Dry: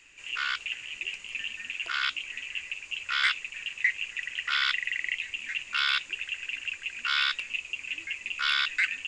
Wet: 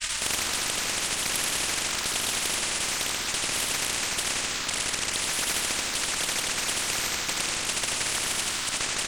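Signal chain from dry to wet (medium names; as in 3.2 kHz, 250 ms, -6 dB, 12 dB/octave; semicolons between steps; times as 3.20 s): amplifier tone stack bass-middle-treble 10-0-10; comb 3.5 ms, depth 95%; transient shaper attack +11 dB, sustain -8 dB; Chebyshev shaper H 6 -29 dB, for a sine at -14 dBFS; transient shaper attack +3 dB, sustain +7 dB; compressor with a negative ratio -34 dBFS, ratio -0.5; granulator, pitch spread up and down by 3 st; delay 82 ms -3.5 dB; reverberation RT60 1.2 s, pre-delay 13 ms, DRR 3 dB; spectrum-flattening compressor 10:1; trim +5.5 dB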